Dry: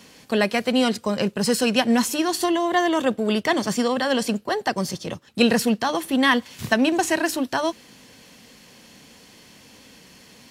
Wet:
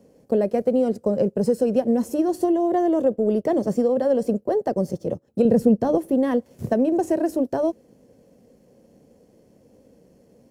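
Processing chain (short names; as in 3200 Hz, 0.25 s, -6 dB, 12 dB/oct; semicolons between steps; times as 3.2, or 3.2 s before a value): G.711 law mismatch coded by A; EQ curve 270 Hz 0 dB, 540 Hz +6 dB, 1000 Hz -14 dB, 3700 Hz -26 dB, 5500 Hz -18 dB, 11000 Hz -14 dB; compressor 4:1, threshold -20 dBFS, peak gain reduction 8 dB; 5.45–5.98 low shelf 230 Hz +11.5 dB; gain +3.5 dB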